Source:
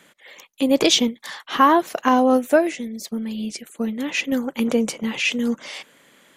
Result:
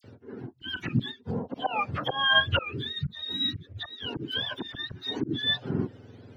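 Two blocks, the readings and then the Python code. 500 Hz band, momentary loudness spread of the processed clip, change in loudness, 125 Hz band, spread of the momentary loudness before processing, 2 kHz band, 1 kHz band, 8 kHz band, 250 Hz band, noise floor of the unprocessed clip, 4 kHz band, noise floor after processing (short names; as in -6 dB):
-15.5 dB, 15 LU, -8.5 dB, n/a, 14 LU, -2.0 dB, -11.5 dB, under -30 dB, -14.0 dB, -55 dBFS, -1.5 dB, -54 dBFS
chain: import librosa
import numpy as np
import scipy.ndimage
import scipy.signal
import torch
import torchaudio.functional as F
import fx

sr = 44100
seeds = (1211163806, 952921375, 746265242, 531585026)

y = fx.octave_mirror(x, sr, pivot_hz=910.0)
y = fx.auto_swell(y, sr, attack_ms=414.0)
y = fx.dispersion(y, sr, late='lows', ms=42.0, hz=2400.0)
y = y * 10.0 ** (1.5 / 20.0)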